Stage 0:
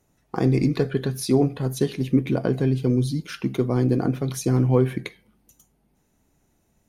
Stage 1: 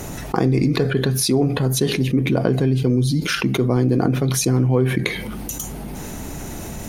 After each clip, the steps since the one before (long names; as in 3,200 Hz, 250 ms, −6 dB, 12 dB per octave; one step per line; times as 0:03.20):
envelope flattener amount 70%
level −1 dB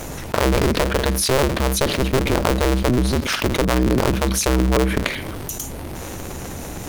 sub-harmonics by changed cycles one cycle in 2, inverted
dynamic equaliser 780 Hz, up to −5 dB, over −40 dBFS, Q 7.3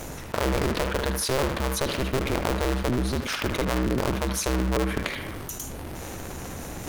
reversed playback
upward compression, threshold −23 dBFS
reversed playback
feedback echo with a band-pass in the loop 75 ms, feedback 60%, band-pass 1,400 Hz, level −5 dB
level −7.5 dB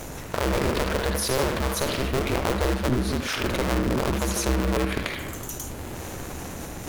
delay with pitch and tempo change per echo 149 ms, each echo +1 semitone, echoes 2, each echo −6 dB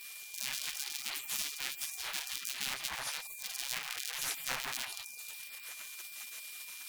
gate on every frequency bin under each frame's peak −25 dB weak
steady tone 2,400 Hz −50 dBFS